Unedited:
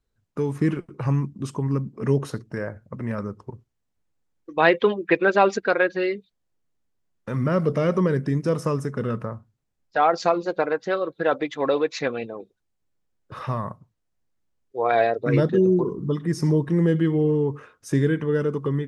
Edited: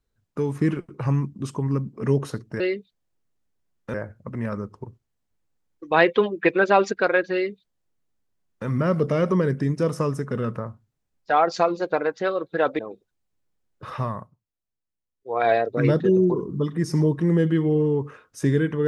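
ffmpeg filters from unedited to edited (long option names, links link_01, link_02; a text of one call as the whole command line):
ffmpeg -i in.wav -filter_complex "[0:a]asplit=6[link_01][link_02][link_03][link_04][link_05][link_06];[link_01]atrim=end=2.602[link_07];[link_02]atrim=start=5.988:end=7.332[link_08];[link_03]atrim=start=2.598:end=11.452[link_09];[link_04]atrim=start=12.278:end=13.86,asetpts=PTS-STARTPTS,afade=type=out:start_time=1.272:duration=0.31:silence=0.237137[link_10];[link_05]atrim=start=13.86:end=14.65,asetpts=PTS-STARTPTS,volume=-12.5dB[link_11];[link_06]atrim=start=14.65,asetpts=PTS-STARTPTS,afade=type=in:duration=0.31:silence=0.237137[link_12];[link_07][link_08]acrossfade=duration=0.004:curve1=hsin:curve2=hsin[link_13];[link_13][link_09]acrossfade=duration=0.004:curve1=hsin:curve2=hsin[link_14];[link_10][link_11][link_12]concat=n=3:v=0:a=1[link_15];[link_14][link_15]acrossfade=duration=0.004:curve1=hsin:curve2=hsin" out.wav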